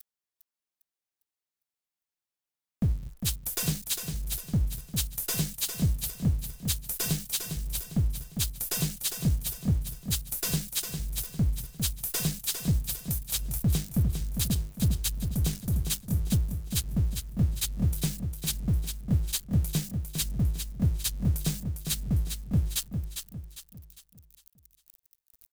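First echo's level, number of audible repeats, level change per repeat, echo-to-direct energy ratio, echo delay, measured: −7.0 dB, 4, −8.0 dB, −6.0 dB, 403 ms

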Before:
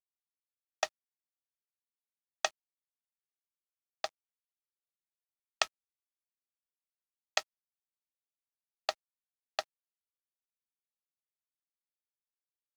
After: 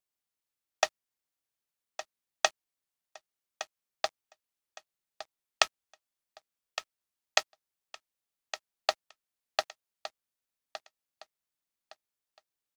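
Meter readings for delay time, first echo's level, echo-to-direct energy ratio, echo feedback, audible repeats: 1,163 ms, −13.0 dB, −12.5 dB, 27%, 2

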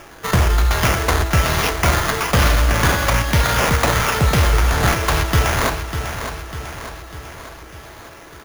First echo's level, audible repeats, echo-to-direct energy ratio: −9.0 dB, 5, −7.5 dB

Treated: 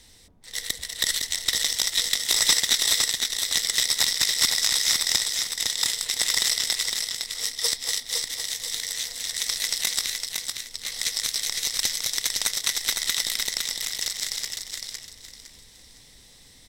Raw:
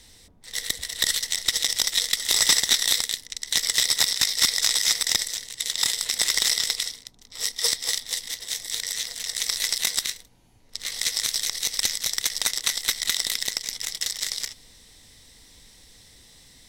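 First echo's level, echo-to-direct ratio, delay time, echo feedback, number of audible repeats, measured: −4.5 dB, −4.0 dB, 509 ms, 29%, 3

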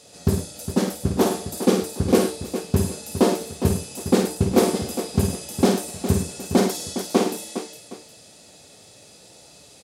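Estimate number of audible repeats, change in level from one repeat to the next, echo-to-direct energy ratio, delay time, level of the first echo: 4, repeats not evenly spaced, −3.0 dB, 52 ms, −6.0 dB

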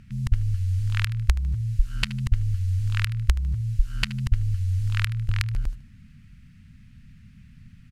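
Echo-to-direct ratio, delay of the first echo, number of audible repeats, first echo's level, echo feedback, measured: −17.0 dB, 76 ms, 3, −17.5 dB, 38%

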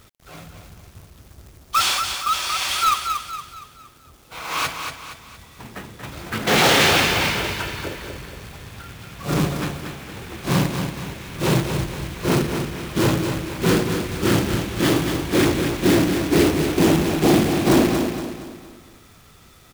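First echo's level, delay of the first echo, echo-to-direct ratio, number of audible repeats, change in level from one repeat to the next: −6.5 dB, 233 ms, −5.5 dB, 4, −7.5 dB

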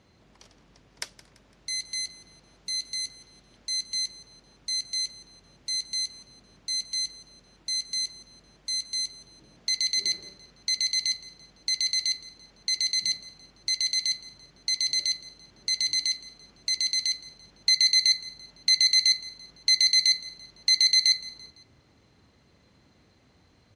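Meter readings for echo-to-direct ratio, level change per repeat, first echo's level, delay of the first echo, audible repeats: −17.5 dB, −7.5 dB, −18.5 dB, 169 ms, 3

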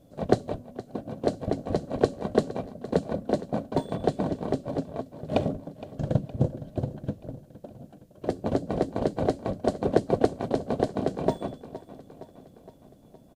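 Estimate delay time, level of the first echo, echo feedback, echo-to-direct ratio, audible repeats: 465 ms, −16.5 dB, 58%, −14.5 dB, 4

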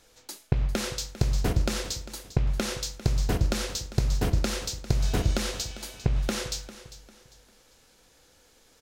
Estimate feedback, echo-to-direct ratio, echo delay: 32%, −15.0 dB, 399 ms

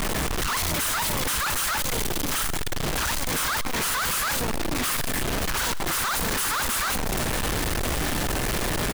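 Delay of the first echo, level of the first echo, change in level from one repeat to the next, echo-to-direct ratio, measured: 130 ms, −19.0 dB, −14.5 dB, −19.0 dB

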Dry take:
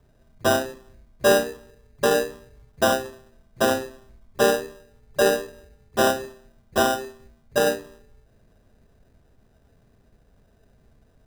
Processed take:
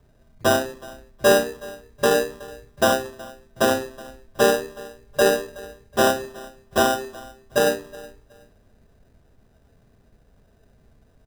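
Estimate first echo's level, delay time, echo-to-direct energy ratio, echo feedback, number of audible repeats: −21.0 dB, 370 ms, −21.0 dB, 24%, 2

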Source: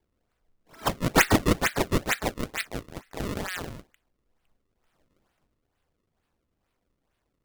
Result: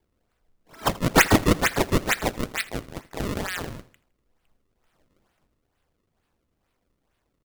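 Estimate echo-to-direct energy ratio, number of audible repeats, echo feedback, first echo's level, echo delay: −19.0 dB, 3, 46%, −20.0 dB, 81 ms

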